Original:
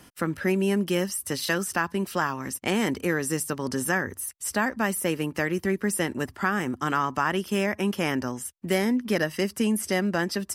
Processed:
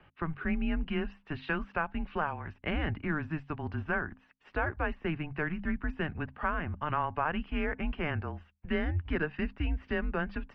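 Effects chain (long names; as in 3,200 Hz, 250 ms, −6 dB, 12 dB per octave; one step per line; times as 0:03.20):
mains-hum notches 60/120/180/240/300/360/420 Hz
single-sideband voice off tune −160 Hz 170–3,100 Hz
level −5.5 dB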